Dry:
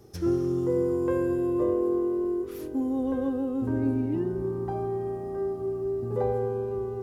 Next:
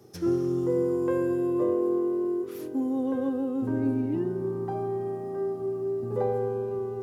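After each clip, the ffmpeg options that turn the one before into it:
ffmpeg -i in.wav -af "highpass=frequency=110:width=0.5412,highpass=frequency=110:width=1.3066" out.wav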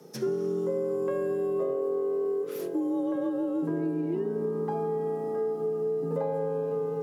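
ffmpeg -i in.wav -af "acompressor=threshold=-29dB:ratio=6,afreqshift=46,volume=3dB" out.wav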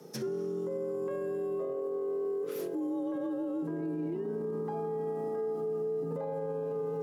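ffmpeg -i in.wav -af "alimiter=level_in=4dB:limit=-24dB:level=0:latency=1:release=59,volume=-4dB" out.wav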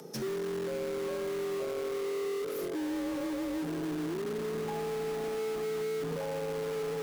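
ffmpeg -i in.wav -filter_complex "[0:a]asplit=2[link_01][link_02];[link_02]aeval=exprs='(mod(47.3*val(0)+1,2)-1)/47.3':channel_layout=same,volume=-8.5dB[link_03];[link_01][link_03]amix=inputs=2:normalize=0,acompressor=mode=upward:threshold=-50dB:ratio=2.5" out.wav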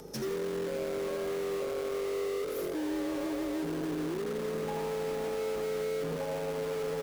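ffmpeg -i in.wav -filter_complex "[0:a]asplit=2[link_01][link_02];[link_02]asplit=3[link_03][link_04][link_05];[link_03]adelay=83,afreqshift=94,volume=-9.5dB[link_06];[link_04]adelay=166,afreqshift=188,volume=-20dB[link_07];[link_05]adelay=249,afreqshift=282,volume=-30.4dB[link_08];[link_06][link_07][link_08]amix=inputs=3:normalize=0[link_09];[link_01][link_09]amix=inputs=2:normalize=0,aeval=exprs='val(0)+0.00112*(sin(2*PI*50*n/s)+sin(2*PI*2*50*n/s)/2+sin(2*PI*3*50*n/s)/3+sin(2*PI*4*50*n/s)/4+sin(2*PI*5*50*n/s)/5)':channel_layout=same" out.wav

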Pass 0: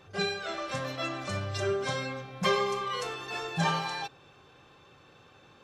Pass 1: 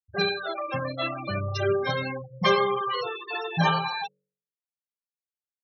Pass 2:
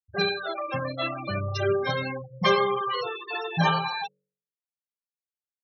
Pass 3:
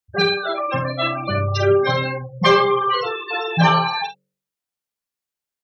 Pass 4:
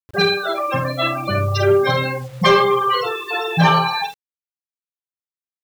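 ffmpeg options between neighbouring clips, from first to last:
ffmpeg -i in.wav -af "afftfilt=real='re*gte(hypot(re,im),0.0355)':imag='im*gte(hypot(re,im),0.0355)':win_size=1024:overlap=0.75,bandreject=frequency=47.14:width_type=h:width=4,bandreject=frequency=94.28:width_type=h:width=4,bandreject=frequency=141.42:width_type=h:width=4,bandreject=frequency=188.56:width_type=h:width=4,bandreject=frequency=235.7:width_type=h:width=4,bandreject=frequency=282.84:width_type=h:width=4,bandreject=frequency=329.98:width_type=h:width=4,bandreject=frequency=377.12:width_type=h:width=4,bandreject=frequency=424.26:width_type=h:width=4,bandreject=frequency=471.4:width_type=h:width=4,bandreject=frequency=518.54:width_type=h:width=4,bandreject=frequency=565.68:width_type=h:width=4,volume=5.5dB" out.wav
ffmpeg -i in.wav -af anull out.wav
ffmpeg -i in.wav -filter_complex "[0:a]acontrast=90,asplit=2[link_01][link_02];[link_02]aecho=0:1:48|70:0.398|0.126[link_03];[link_01][link_03]amix=inputs=2:normalize=0" out.wav
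ffmpeg -i in.wav -filter_complex "[0:a]asplit=2[link_01][link_02];[link_02]volume=11.5dB,asoftclip=hard,volume=-11.5dB,volume=-7.5dB[link_03];[link_01][link_03]amix=inputs=2:normalize=0,acrusher=bits=6:mix=0:aa=0.000001,volume=-1.5dB" out.wav

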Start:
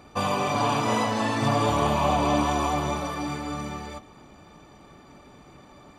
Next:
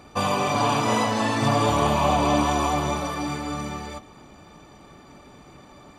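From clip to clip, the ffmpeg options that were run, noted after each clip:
ffmpeg -i in.wav -af "equalizer=frequency=8100:width_type=o:width=2:gain=2,volume=2dB" out.wav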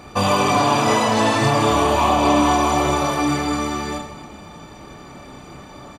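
ffmpeg -i in.wav -filter_complex "[0:a]alimiter=limit=-14.5dB:level=0:latency=1:release=357,asplit=2[link_01][link_02];[link_02]aecho=0:1:30|78|154.8|277.7|474.3:0.631|0.398|0.251|0.158|0.1[link_03];[link_01][link_03]amix=inputs=2:normalize=0,acontrast=66" out.wav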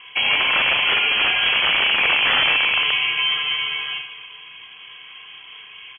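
ffmpeg -i in.wav -af "lowshelf=frequency=160:gain=-6,aeval=exprs='(mod(3.16*val(0)+1,2)-1)/3.16':channel_layout=same,lowpass=frequency=2900:width_type=q:width=0.5098,lowpass=frequency=2900:width_type=q:width=0.6013,lowpass=frequency=2900:width_type=q:width=0.9,lowpass=frequency=2900:width_type=q:width=2.563,afreqshift=-3400" out.wav

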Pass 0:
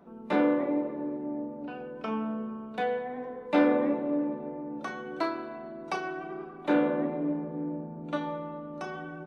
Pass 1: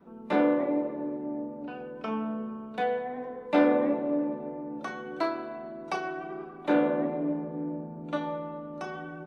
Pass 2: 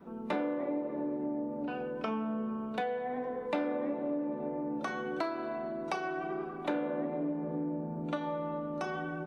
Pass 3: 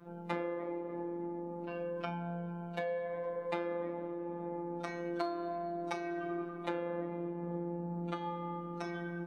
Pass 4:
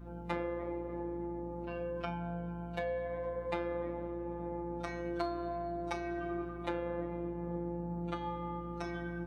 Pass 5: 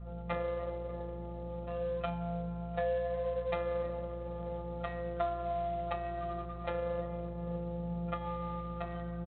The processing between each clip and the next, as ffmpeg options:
ffmpeg -i in.wav -af "adynamicequalizer=threshold=0.0112:dfrequency=660:dqfactor=3.5:tfrequency=660:tqfactor=3.5:attack=5:release=100:ratio=0.375:range=2:mode=boostabove:tftype=bell" out.wav
ffmpeg -i in.wav -af "acompressor=threshold=-35dB:ratio=5,volume=3.5dB" out.wav
ffmpeg -i in.wav -af "afftfilt=real='hypot(re,im)*cos(PI*b)':imag='0':win_size=1024:overlap=0.75,volume=1dB" out.wav
ffmpeg -i in.wav -af "aeval=exprs='val(0)+0.00398*(sin(2*PI*60*n/s)+sin(2*PI*2*60*n/s)/2+sin(2*PI*3*60*n/s)/3+sin(2*PI*4*60*n/s)/4+sin(2*PI*5*60*n/s)/5)':channel_layout=same" out.wav
ffmpeg -i in.wav -af "aecho=1:1:1.6:0.89,adynamicsmooth=sensitivity=4:basefreq=1900" -ar 8000 -c:a adpcm_ima_wav out.wav

